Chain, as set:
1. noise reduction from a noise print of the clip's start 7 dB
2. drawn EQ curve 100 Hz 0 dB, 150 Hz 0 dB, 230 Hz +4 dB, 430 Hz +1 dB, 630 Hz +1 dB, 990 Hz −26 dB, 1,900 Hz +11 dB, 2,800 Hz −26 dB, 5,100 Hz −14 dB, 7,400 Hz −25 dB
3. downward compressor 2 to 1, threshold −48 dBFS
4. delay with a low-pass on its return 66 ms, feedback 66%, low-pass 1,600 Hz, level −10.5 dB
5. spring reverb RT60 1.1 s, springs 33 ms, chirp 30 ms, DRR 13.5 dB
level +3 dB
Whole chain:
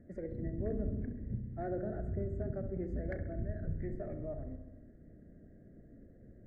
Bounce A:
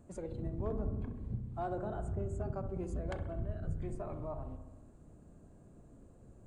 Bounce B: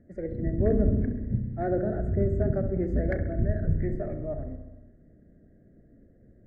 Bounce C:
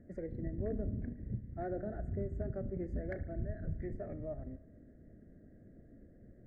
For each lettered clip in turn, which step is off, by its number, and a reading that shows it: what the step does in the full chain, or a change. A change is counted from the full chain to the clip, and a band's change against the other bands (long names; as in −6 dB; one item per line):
2, 1 kHz band +7.5 dB
3, average gain reduction 8.0 dB
4, echo-to-direct ratio −8.5 dB to −13.5 dB